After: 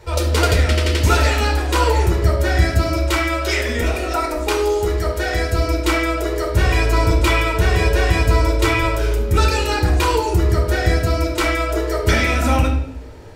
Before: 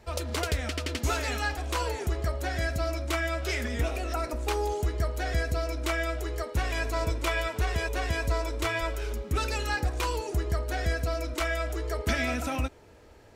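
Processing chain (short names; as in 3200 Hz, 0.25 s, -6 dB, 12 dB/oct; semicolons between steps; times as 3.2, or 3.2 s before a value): 2.96–5.53 bell 120 Hz -11 dB 1.7 oct; reverb RT60 0.70 s, pre-delay 9 ms, DRR 0 dB; gain +7.5 dB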